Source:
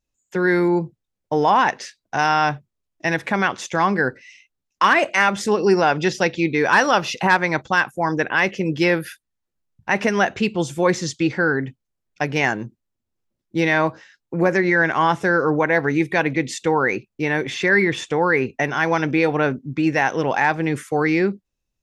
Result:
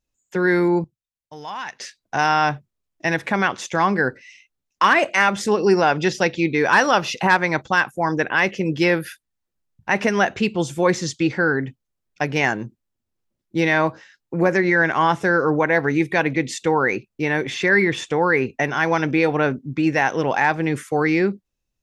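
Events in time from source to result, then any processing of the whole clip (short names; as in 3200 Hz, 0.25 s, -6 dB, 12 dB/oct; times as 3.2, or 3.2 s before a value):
0.84–1.8 passive tone stack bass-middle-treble 5-5-5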